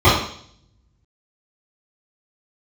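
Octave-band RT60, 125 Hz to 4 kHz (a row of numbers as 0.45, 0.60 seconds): 0.90, 0.70, 0.60, 0.55, 0.60, 0.70 seconds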